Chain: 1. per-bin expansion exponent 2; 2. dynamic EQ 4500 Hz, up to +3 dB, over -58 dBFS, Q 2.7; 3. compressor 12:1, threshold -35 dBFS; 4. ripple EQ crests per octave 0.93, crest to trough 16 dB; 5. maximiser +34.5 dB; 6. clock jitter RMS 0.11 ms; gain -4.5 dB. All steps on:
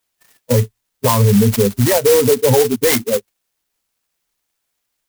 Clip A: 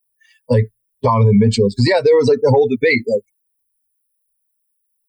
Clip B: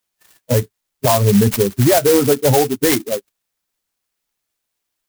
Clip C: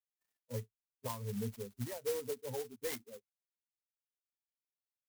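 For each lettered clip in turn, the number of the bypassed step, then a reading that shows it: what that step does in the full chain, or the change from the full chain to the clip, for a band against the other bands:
6, 2 kHz band +4.5 dB; 4, 1 kHz band +2.0 dB; 5, crest factor change +6.0 dB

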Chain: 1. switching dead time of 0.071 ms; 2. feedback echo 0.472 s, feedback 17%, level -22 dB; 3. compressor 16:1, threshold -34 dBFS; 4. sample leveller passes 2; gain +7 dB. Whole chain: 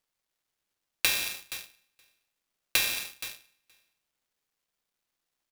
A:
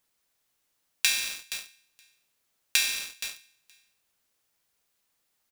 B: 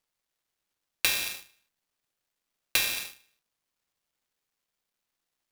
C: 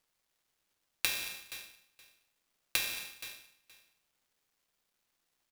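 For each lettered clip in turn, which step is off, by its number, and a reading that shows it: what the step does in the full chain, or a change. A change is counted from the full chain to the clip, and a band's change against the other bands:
1, crest factor change +1.5 dB; 2, loudness change +1.5 LU; 4, crest factor change +6.5 dB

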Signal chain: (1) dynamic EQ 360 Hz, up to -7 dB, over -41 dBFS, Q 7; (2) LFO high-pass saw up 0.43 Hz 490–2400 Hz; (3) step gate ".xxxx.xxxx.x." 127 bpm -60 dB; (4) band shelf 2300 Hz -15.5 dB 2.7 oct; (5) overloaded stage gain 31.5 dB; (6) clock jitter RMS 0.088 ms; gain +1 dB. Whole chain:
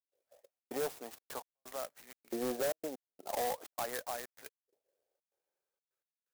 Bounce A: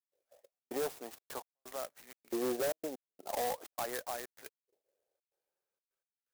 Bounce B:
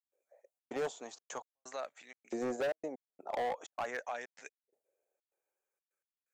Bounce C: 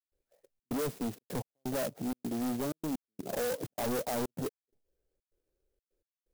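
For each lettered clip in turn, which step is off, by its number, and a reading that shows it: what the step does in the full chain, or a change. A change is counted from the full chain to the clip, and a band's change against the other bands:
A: 1, 250 Hz band +1.5 dB; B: 6, 8 kHz band -6.0 dB; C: 2, 125 Hz band +15.5 dB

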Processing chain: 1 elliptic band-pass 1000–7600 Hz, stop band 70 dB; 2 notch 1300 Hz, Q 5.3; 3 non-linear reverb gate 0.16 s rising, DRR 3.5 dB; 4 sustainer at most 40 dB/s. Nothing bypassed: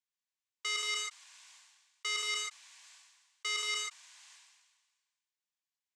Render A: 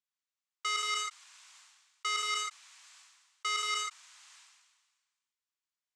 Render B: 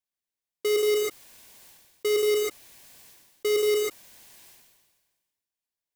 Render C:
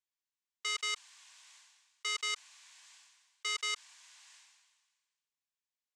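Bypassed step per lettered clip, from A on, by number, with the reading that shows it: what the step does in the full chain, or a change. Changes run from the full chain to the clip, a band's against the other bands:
2, 1 kHz band +9.5 dB; 1, 500 Hz band +30.5 dB; 3, momentary loudness spread change -16 LU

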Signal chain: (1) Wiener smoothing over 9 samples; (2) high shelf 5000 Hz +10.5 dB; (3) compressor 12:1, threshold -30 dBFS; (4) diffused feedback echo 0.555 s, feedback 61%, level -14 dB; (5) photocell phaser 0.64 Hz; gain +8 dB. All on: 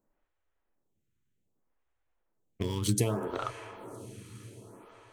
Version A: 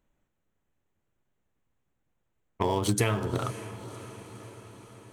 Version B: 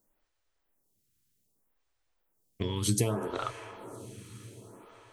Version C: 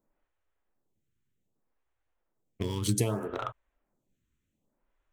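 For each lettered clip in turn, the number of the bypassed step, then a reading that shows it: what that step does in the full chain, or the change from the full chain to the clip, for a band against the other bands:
5, 2 kHz band +5.5 dB; 1, 4 kHz band +1.5 dB; 4, momentary loudness spread change -10 LU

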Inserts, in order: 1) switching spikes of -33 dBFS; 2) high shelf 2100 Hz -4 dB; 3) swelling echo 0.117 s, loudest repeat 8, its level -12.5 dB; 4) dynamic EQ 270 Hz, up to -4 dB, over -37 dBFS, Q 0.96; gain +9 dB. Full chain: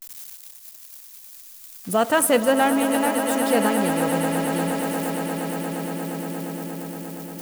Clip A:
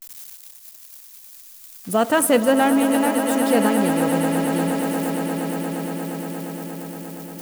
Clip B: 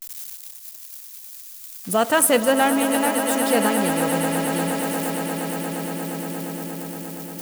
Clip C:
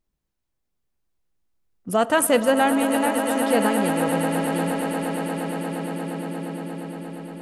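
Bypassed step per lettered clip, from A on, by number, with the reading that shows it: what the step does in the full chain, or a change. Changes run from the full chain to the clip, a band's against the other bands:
4, loudness change +2.0 LU; 2, momentary loudness spread change -3 LU; 1, distortion -15 dB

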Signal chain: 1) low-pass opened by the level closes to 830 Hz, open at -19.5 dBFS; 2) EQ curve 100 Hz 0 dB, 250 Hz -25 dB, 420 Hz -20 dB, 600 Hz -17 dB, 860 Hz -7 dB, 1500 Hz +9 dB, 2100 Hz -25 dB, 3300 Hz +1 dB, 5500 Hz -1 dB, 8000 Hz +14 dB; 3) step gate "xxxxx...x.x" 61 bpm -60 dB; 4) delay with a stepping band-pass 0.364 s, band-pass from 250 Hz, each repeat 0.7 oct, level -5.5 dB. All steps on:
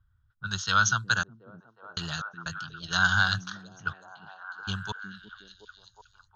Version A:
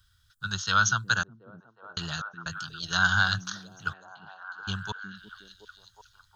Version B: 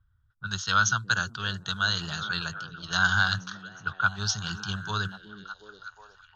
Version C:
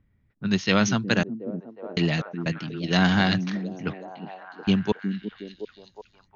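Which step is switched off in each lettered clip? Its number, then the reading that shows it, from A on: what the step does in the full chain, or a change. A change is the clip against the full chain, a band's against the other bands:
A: 1, momentary loudness spread change +2 LU; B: 3, crest factor change -1.5 dB; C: 2, crest factor change -2.5 dB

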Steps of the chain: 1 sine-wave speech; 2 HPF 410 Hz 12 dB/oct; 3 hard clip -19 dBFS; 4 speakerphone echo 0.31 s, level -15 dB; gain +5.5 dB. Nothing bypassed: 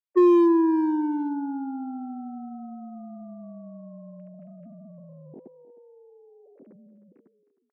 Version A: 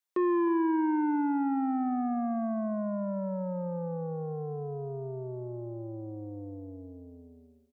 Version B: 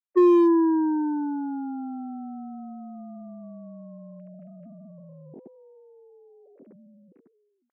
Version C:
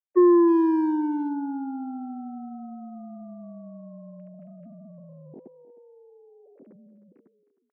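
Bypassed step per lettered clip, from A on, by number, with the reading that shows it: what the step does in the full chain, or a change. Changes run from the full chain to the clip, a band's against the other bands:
1, 125 Hz band +15.5 dB; 4, echo-to-direct -18.5 dB to none; 3, distortion -28 dB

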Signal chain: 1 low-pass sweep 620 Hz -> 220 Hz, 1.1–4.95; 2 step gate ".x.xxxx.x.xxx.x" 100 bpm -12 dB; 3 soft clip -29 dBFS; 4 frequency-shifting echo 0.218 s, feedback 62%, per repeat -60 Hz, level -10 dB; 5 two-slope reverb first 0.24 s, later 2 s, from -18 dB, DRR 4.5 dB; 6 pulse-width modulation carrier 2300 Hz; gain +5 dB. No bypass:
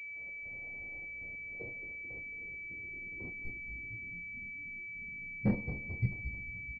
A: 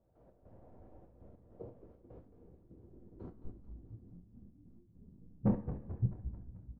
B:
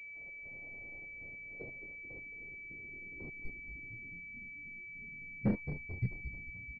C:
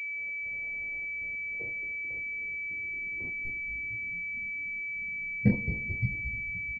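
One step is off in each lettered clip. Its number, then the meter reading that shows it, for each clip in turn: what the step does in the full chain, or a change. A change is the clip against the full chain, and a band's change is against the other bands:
6, 1 kHz band +2.0 dB; 5, loudness change -3.0 LU; 3, distortion -7 dB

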